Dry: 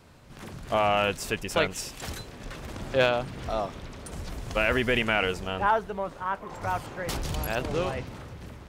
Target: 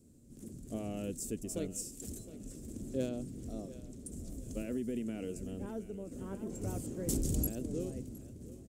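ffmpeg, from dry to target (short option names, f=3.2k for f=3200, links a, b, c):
-filter_complex "[0:a]aecho=1:1:714|1428|2142|2856:0.15|0.0613|0.0252|0.0103,asplit=3[a][b][c];[a]afade=t=out:st=6.11:d=0.02[d];[b]acontrast=68,afade=t=in:st=6.11:d=0.02,afade=t=out:st=7.48:d=0.02[e];[c]afade=t=in:st=7.48:d=0.02[f];[d][e][f]amix=inputs=3:normalize=0,firequalizer=gain_entry='entry(160,0);entry(240,9);entry(890,-25);entry(4300,-12);entry(7500,8);entry(12000,3)':delay=0.05:min_phase=1,asettb=1/sr,asplit=3[g][h][i];[g]atrim=end=4.624[j];[h]atrim=start=4.62:end=5.36,asetpts=PTS-STARTPTS,afade=t=in:d=0.004:c=qsin,afade=t=out:st=0.736:d=0.004:c=qsin,acrossover=split=120|3000[k][l][m];[k]acompressor=threshold=-46dB:ratio=4[n];[l]acompressor=threshold=-25dB:ratio=4[o];[m]acompressor=threshold=-51dB:ratio=4[p];[n][o][p]amix=inputs=3:normalize=0[q];[i]atrim=start=5.356[r];[j][q]acrossfade=d=0.004:c1=hsin:c2=qsin[s];[s][r]acrossfade=d=0.004:c1=qsin:c2=hsin,volume=-8.5dB"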